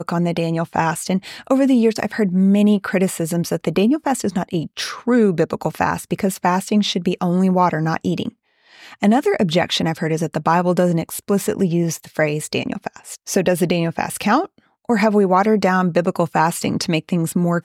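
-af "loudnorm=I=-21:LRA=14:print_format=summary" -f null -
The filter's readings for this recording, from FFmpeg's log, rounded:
Input Integrated:    -18.6 LUFS
Input True Peak:      -4.1 dBTP
Input LRA:             2.3 LU
Input Threshold:     -28.8 LUFS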